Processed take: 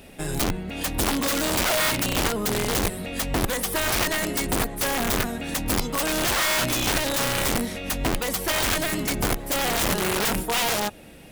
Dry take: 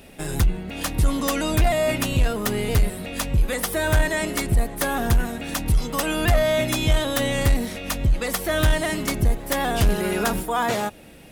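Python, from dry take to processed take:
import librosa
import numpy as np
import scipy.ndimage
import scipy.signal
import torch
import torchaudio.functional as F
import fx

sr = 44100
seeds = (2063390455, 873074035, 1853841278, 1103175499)

y = (np.mod(10.0 ** (17.5 / 20.0) * x + 1.0, 2.0) - 1.0) / 10.0 ** (17.5 / 20.0)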